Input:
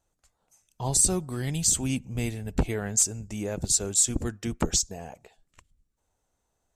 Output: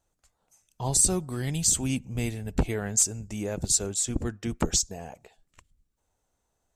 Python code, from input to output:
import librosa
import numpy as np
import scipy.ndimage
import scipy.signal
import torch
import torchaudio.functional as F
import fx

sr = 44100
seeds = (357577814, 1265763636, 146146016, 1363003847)

y = fx.high_shelf(x, sr, hz=fx.line((3.86, 4000.0), (4.48, 6200.0)), db=-8.0, at=(3.86, 4.48), fade=0.02)